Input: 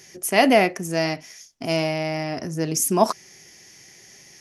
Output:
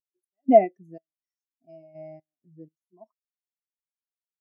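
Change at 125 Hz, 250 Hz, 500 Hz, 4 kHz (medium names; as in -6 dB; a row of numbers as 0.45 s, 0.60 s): -19.5 dB, -6.5 dB, -2.5 dB, under -35 dB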